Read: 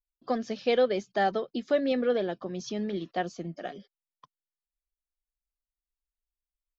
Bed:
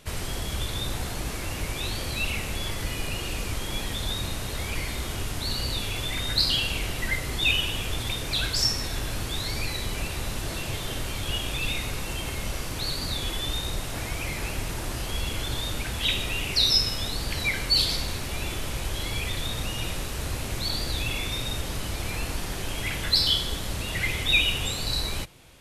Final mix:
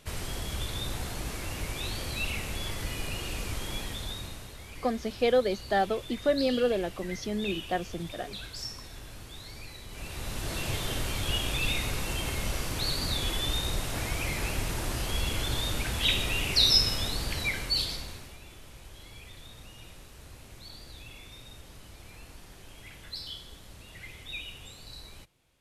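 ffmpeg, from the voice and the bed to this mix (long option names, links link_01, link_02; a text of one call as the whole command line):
ffmpeg -i stem1.wav -i stem2.wav -filter_complex "[0:a]adelay=4550,volume=0dB[link_01];[1:a]volume=10dB,afade=type=out:start_time=3.67:duration=0.9:silence=0.298538,afade=type=in:start_time=9.88:duration=0.81:silence=0.199526,afade=type=out:start_time=16.92:duration=1.47:silence=0.133352[link_02];[link_01][link_02]amix=inputs=2:normalize=0" out.wav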